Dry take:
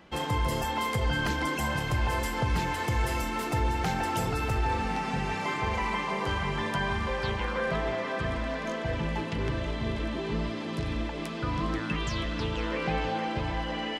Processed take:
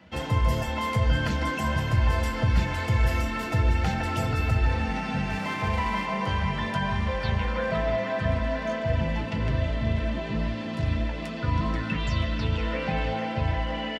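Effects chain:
far-end echo of a speakerphone 150 ms, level −11 dB
convolution reverb, pre-delay 3 ms, DRR 3 dB
0:05.30–0:06.06: windowed peak hold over 3 samples
level −7.5 dB

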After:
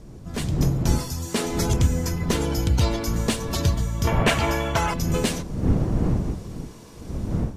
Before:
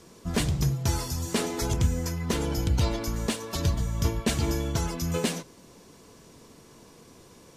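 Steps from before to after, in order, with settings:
wind on the microphone 180 Hz −30 dBFS
0:04.07–0:04.94: flat-topped bell 1,300 Hz +11.5 dB 2.8 octaves
automatic gain control gain up to 11 dB
level −5.5 dB

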